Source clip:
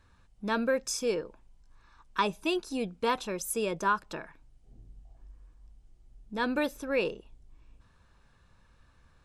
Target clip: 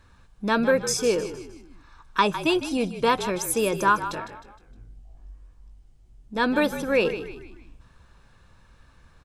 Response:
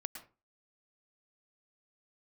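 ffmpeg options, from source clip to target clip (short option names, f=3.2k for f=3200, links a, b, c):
-filter_complex "[0:a]asplit=3[a][b][c];[a]afade=t=out:st=4.12:d=0.02[d];[b]flanger=delay=17:depth=3.7:speed=1.6,afade=t=in:st=4.12:d=0.02,afade=t=out:st=6.35:d=0.02[e];[c]afade=t=in:st=6.35:d=0.02[f];[d][e][f]amix=inputs=3:normalize=0,asplit=5[g][h][i][j][k];[h]adelay=155,afreqshift=-46,volume=-11.5dB[l];[i]adelay=310,afreqshift=-92,volume=-18.8dB[m];[j]adelay=465,afreqshift=-138,volume=-26.2dB[n];[k]adelay=620,afreqshift=-184,volume=-33.5dB[o];[g][l][m][n][o]amix=inputs=5:normalize=0,volume=7dB"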